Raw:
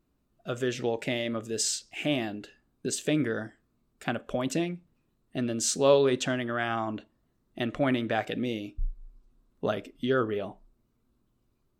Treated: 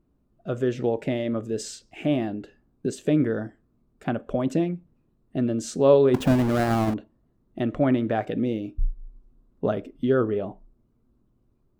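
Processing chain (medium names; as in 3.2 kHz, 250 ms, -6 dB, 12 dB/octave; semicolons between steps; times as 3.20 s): 6.14–6.94 s: square wave that keeps the level; tilt shelf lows +8 dB, about 1.4 kHz; trim -1.5 dB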